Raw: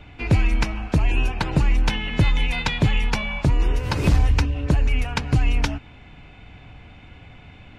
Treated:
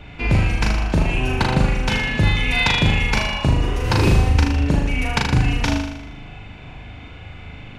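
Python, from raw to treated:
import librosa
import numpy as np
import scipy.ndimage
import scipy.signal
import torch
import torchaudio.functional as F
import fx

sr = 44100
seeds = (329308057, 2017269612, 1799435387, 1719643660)

p1 = fx.over_compress(x, sr, threshold_db=-21.0, ratio=-1.0)
p2 = x + (p1 * 10.0 ** (-2.5 / 20.0))
p3 = fx.room_flutter(p2, sr, wall_m=6.7, rt60_s=0.85)
y = p3 * 10.0 ** (-2.5 / 20.0)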